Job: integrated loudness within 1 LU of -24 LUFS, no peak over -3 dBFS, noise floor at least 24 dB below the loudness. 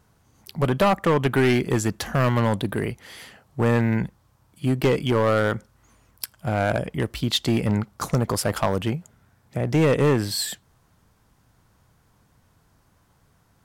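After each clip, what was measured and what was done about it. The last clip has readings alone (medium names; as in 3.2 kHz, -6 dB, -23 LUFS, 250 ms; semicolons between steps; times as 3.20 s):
clipped samples 1.8%; clipping level -14.0 dBFS; loudness -23.0 LUFS; peak level -14.0 dBFS; loudness target -24.0 LUFS
-> clip repair -14 dBFS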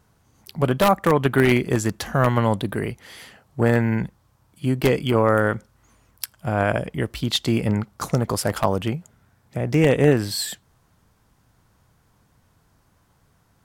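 clipped samples 0.0%; loudness -21.5 LUFS; peak level -5.0 dBFS; loudness target -24.0 LUFS
-> trim -2.5 dB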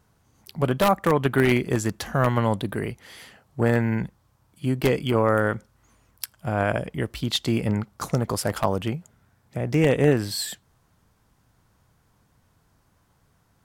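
loudness -24.0 LUFS; peak level -7.5 dBFS; noise floor -65 dBFS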